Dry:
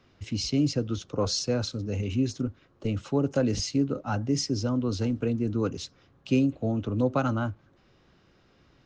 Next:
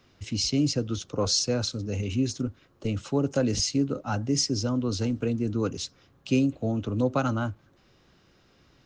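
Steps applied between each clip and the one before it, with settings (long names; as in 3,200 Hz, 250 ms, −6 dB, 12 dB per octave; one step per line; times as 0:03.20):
high-shelf EQ 5,200 Hz +9.5 dB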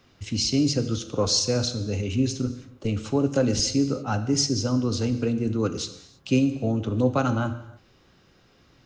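reverb whose tail is shaped and stops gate 350 ms falling, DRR 9 dB
level +2 dB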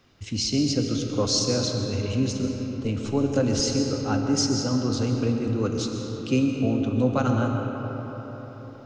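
comb and all-pass reverb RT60 4.9 s, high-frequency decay 0.45×, pre-delay 85 ms, DRR 3 dB
level −1.5 dB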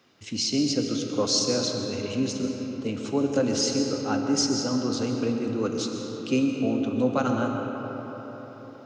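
high-pass filter 190 Hz 12 dB per octave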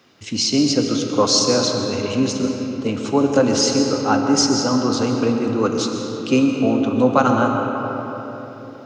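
dynamic equaliser 1,000 Hz, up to +7 dB, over −45 dBFS, Q 1.4
level +7 dB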